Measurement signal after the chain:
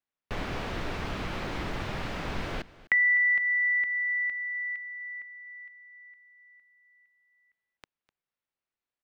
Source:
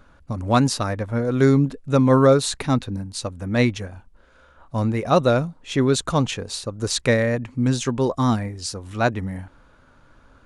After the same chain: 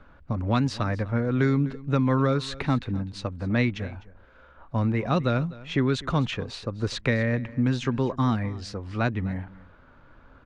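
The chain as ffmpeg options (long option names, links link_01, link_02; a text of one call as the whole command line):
ffmpeg -i in.wav -filter_complex "[0:a]firequalizer=gain_entry='entry(2100,0);entry(7300,-18);entry(11000,-26)':delay=0.05:min_phase=1,acrossover=split=320|1100|2500[link_01][link_02][link_03][link_04];[link_01]acompressor=threshold=-21dB:ratio=4[link_05];[link_02]acompressor=threshold=-33dB:ratio=4[link_06];[link_03]acompressor=threshold=-31dB:ratio=4[link_07];[link_04]acompressor=threshold=-31dB:ratio=4[link_08];[link_05][link_06][link_07][link_08]amix=inputs=4:normalize=0,aecho=1:1:252:0.106" out.wav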